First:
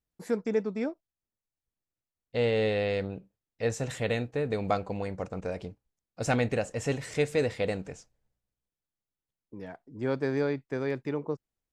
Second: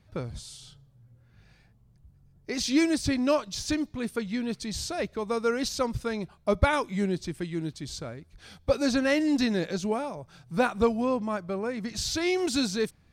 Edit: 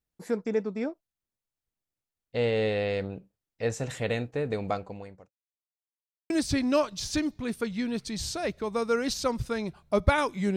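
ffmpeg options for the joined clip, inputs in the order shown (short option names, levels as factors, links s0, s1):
-filter_complex "[0:a]apad=whole_dur=10.56,atrim=end=10.56,asplit=2[s0][s1];[s0]atrim=end=5.31,asetpts=PTS-STARTPTS,afade=t=out:st=4.53:d=0.78[s2];[s1]atrim=start=5.31:end=6.3,asetpts=PTS-STARTPTS,volume=0[s3];[1:a]atrim=start=2.85:end=7.11,asetpts=PTS-STARTPTS,afade=t=in:d=0.004:c=hsin[s4];[s2][s3][s4]concat=n=3:v=0:a=1"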